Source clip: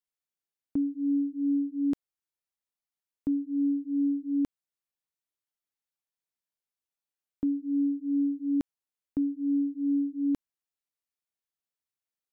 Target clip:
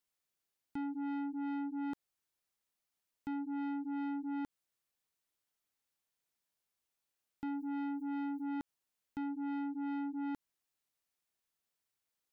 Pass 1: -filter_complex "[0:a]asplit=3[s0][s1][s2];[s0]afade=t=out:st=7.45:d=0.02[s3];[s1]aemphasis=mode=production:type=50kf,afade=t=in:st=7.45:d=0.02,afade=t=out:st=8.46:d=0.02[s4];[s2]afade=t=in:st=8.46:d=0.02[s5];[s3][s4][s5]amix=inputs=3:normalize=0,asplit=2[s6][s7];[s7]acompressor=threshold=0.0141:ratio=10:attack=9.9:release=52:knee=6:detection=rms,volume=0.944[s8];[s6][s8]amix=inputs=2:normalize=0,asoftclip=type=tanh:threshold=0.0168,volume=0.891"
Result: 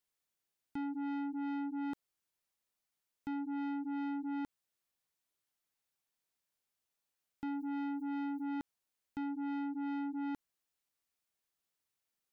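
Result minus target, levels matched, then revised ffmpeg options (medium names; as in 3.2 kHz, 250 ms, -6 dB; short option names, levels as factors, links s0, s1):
compression: peak gain reduction -8.5 dB
-filter_complex "[0:a]asplit=3[s0][s1][s2];[s0]afade=t=out:st=7.45:d=0.02[s3];[s1]aemphasis=mode=production:type=50kf,afade=t=in:st=7.45:d=0.02,afade=t=out:st=8.46:d=0.02[s4];[s2]afade=t=in:st=8.46:d=0.02[s5];[s3][s4][s5]amix=inputs=3:normalize=0,asplit=2[s6][s7];[s7]acompressor=threshold=0.00473:ratio=10:attack=9.9:release=52:knee=6:detection=rms,volume=0.944[s8];[s6][s8]amix=inputs=2:normalize=0,asoftclip=type=tanh:threshold=0.0168,volume=0.891"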